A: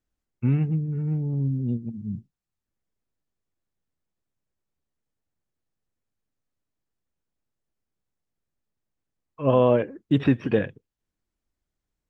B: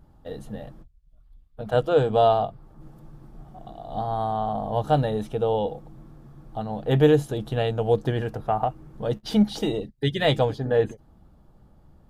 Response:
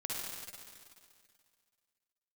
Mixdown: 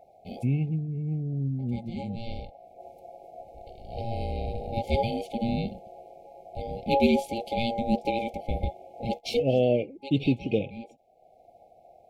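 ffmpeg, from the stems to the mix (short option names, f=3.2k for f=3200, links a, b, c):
-filter_complex "[0:a]volume=-4dB,asplit=2[a][b];[1:a]aeval=exprs='val(0)*sin(2*PI*690*n/s)':c=same,volume=1dB[c];[b]apad=whole_len=533585[d];[c][d]sidechaincompress=threshold=-49dB:ratio=3:attack=31:release=463[e];[a][e]amix=inputs=2:normalize=0,afftfilt=real='re*(1-between(b*sr/4096,830,2100))':imag='im*(1-between(b*sr/4096,830,2100))':win_size=4096:overlap=0.75,adynamicequalizer=threshold=0.00251:dfrequency=3000:dqfactor=1.2:tfrequency=3000:tqfactor=1.2:attack=5:release=100:ratio=0.375:range=2.5:mode=boostabove:tftype=bell"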